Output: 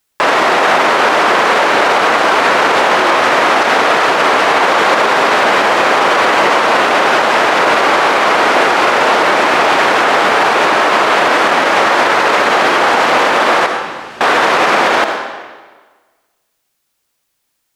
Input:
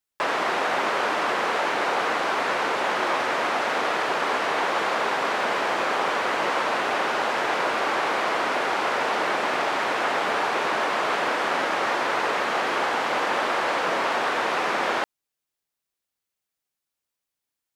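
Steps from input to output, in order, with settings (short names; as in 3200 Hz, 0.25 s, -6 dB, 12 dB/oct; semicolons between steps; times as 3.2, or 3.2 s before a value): 13.66–14.21 passive tone stack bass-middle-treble 10-0-1; reverb RT60 1.4 s, pre-delay 25 ms, DRR 8.5 dB; maximiser +18 dB; gain -1 dB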